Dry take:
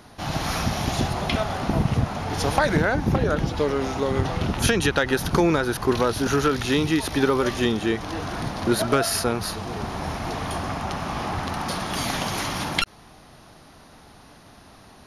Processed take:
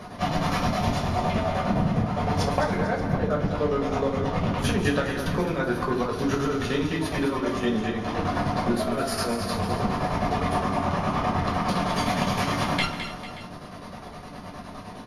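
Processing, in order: high-pass 320 Hz 6 dB/octave; tilt EQ -2.5 dB/octave; compression 4:1, threshold -33 dBFS, peak gain reduction 15.5 dB; square tremolo 9.7 Hz, depth 65%, duty 55%; multi-tap echo 142/211/285/447/579 ms -17/-8.5/-17.5/-16.5/-18 dB; reverberation RT60 0.30 s, pre-delay 7 ms, DRR -2.5 dB; trim +4.5 dB

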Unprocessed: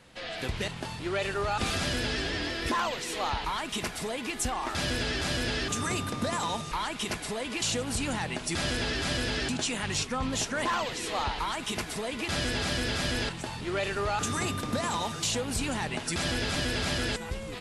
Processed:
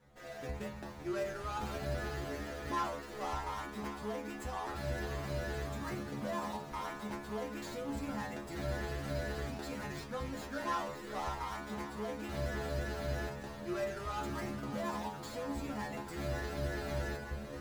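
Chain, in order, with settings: median filter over 15 samples; inharmonic resonator 69 Hz, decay 0.53 s, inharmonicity 0.002; two-band feedback delay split 310 Hz, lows 242 ms, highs 560 ms, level -11 dB; trim +3.5 dB

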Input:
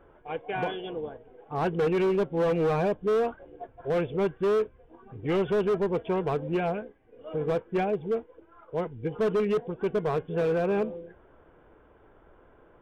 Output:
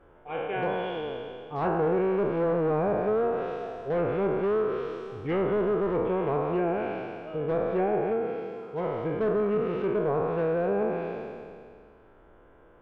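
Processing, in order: spectral sustain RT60 2.19 s; low-pass that closes with the level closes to 1.3 kHz, closed at -19.5 dBFS; 8.13–8.84 s: comb of notches 590 Hz; trim -2.5 dB

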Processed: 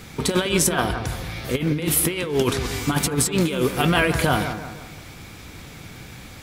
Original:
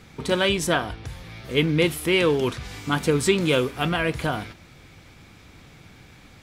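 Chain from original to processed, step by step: treble shelf 7.9 kHz +11 dB; compressor with a negative ratio -24 dBFS, ratio -0.5; bucket-brigade echo 169 ms, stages 2048, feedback 43%, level -9 dB; trim +4 dB

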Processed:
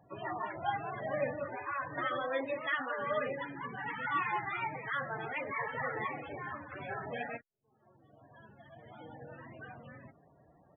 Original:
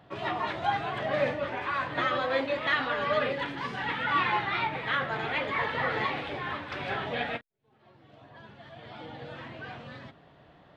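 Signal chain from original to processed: resampled via 8 kHz; loudest bins only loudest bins 32; trim -6 dB

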